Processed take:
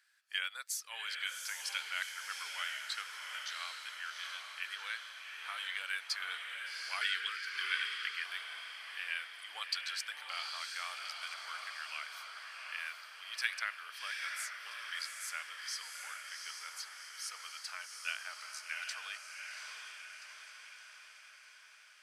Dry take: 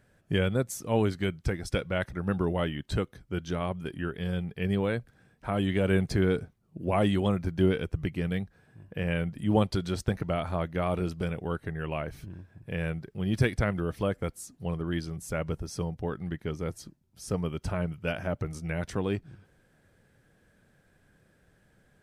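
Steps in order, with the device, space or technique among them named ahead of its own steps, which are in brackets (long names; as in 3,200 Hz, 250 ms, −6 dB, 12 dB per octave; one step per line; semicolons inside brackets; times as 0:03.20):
headphones lying on a table (high-pass filter 1,400 Hz 24 dB per octave; parametric band 4,600 Hz +8.5 dB 0.48 octaves)
feedback delay with all-pass diffusion 764 ms, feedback 59%, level −3.5 dB
0:07.01–0:08.24: drawn EQ curve 170 Hz 0 dB, 260 Hz −6 dB, 420 Hz +9 dB, 660 Hz −20 dB, 1,500 Hz +7 dB, 9,200 Hz −1 dB
level −1.5 dB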